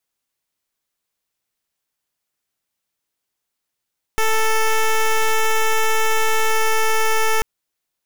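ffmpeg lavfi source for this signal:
-f lavfi -i "aevalsrc='0.158*(2*lt(mod(441*t,1),0.1)-1)':d=3.24:s=44100"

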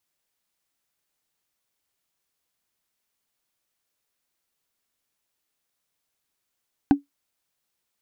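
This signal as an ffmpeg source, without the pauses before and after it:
-f lavfi -i "aevalsrc='0.398*pow(10,-3*t/0.14)*sin(2*PI*283*t)+0.158*pow(10,-3*t/0.041)*sin(2*PI*780.2*t)+0.0631*pow(10,-3*t/0.018)*sin(2*PI*1529.3*t)+0.0251*pow(10,-3*t/0.01)*sin(2*PI*2528*t)+0.01*pow(10,-3*t/0.006)*sin(2*PI*3775.2*t)':d=0.45:s=44100"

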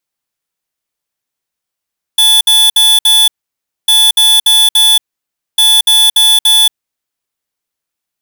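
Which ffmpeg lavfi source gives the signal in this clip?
-f lavfi -i "aevalsrc='0.447*(2*lt(mod(3460*t,1),0.5)-1)*clip(min(mod(mod(t,1.7),0.29),0.23-mod(mod(t,1.7),0.29))/0.005,0,1)*lt(mod(t,1.7),1.16)':d=5.1:s=44100"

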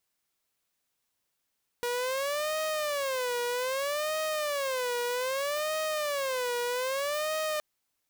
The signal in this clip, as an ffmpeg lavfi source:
-f lavfi -i "aevalsrc='0.0501*(2*mod((554*t-72/(2*PI*0.63)*sin(2*PI*0.63*t)),1)-1)':d=5.77:s=44100"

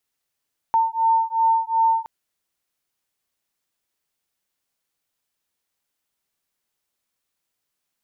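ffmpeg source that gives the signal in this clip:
-f lavfi -i "aevalsrc='0.106*(sin(2*PI*902*t)+sin(2*PI*904.7*t))':d=1.32:s=44100"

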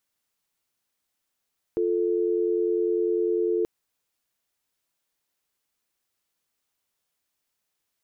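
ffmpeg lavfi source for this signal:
-f lavfi -i "aevalsrc='0.0631*(sin(2*PI*350*t)+sin(2*PI*440*t))':d=1.88:s=44100"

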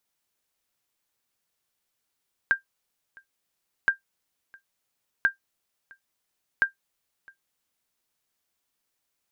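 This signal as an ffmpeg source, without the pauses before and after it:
-f lavfi -i "aevalsrc='0.266*(sin(2*PI*1590*mod(t,1.37))*exp(-6.91*mod(t,1.37)/0.12)+0.0398*sin(2*PI*1590*max(mod(t,1.37)-0.66,0))*exp(-6.91*max(mod(t,1.37)-0.66,0)/0.12))':d=5.48:s=44100"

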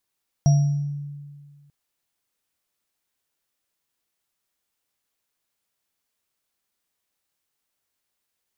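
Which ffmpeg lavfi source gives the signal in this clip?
-f lavfi -i "aevalsrc='0.266*pow(10,-3*t/1.82)*sin(2*PI*144*t)+0.0473*pow(10,-3*t/0.59)*sin(2*PI*684*t)+0.0299*pow(10,-3*t/0.66)*sin(2*PI*5680*t)':d=1.24:s=44100"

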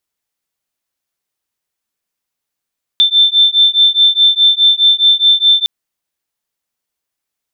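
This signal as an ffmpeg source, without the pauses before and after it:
-f lavfi -i "aevalsrc='0.316*(sin(2*PI*3550*t)+sin(2*PI*3554.8*t))':d=2.66:s=44100"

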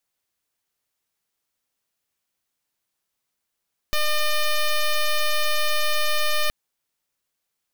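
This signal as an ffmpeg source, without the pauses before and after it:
-f lavfi -i "aevalsrc='0.1*(2*lt(mod(604*t,1),0.08)-1)':d=2.57:s=44100"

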